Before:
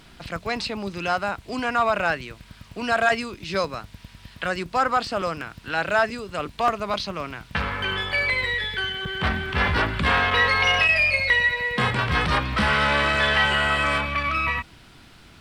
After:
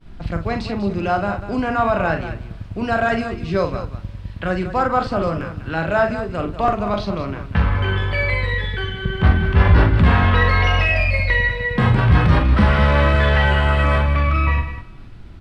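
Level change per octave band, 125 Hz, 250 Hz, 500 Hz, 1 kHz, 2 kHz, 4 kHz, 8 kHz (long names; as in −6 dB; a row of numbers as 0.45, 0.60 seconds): +14.5 dB, +9.0 dB, +5.5 dB, +2.5 dB, −0.5 dB, −4.0 dB, can't be measured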